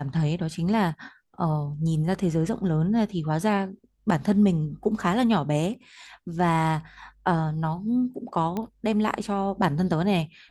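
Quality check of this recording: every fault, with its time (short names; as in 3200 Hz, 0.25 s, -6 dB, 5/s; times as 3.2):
8.57 pop -17 dBFS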